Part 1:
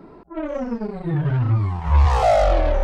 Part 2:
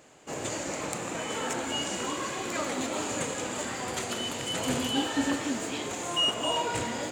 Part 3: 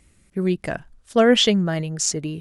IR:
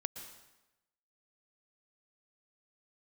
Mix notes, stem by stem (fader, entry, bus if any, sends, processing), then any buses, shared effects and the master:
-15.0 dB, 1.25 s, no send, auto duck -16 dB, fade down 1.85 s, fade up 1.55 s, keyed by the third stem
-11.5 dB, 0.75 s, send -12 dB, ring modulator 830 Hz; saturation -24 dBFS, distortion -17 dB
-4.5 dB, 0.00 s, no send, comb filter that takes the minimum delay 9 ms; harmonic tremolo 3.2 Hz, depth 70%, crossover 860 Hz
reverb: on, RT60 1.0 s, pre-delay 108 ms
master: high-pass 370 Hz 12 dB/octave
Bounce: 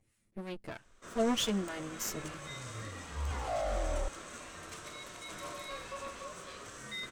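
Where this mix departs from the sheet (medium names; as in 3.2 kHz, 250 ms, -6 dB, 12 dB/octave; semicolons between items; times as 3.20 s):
stem 3 -4.5 dB -> -12.0 dB; master: missing high-pass 370 Hz 12 dB/octave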